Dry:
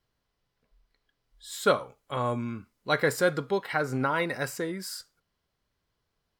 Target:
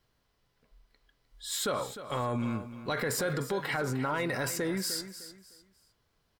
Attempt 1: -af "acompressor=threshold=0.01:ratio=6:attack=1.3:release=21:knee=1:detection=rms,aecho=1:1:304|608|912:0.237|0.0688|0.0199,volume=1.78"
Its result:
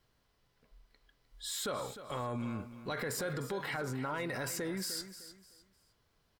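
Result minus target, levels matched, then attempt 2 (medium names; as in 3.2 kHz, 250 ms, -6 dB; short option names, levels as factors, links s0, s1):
compression: peak gain reduction +6 dB
-af "acompressor=threshold=0.0224:ratio=6:attack=1.3:release=21:knee=1:detection=rms,aecho=1:1:304|608|912:0.237|0.0688|0.0199,volume=1.78"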